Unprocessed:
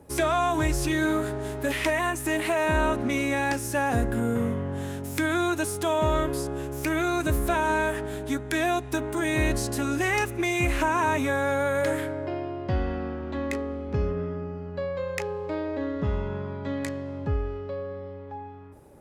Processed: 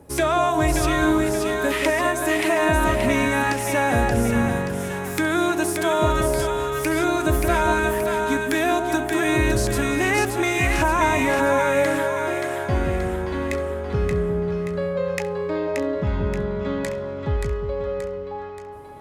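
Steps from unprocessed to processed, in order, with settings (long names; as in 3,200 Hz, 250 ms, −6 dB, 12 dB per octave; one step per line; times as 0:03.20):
echo with a time of its own for lows and highs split 860 Hz, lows 178 ms, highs 578 ms, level −4 dB
level +3.5 dB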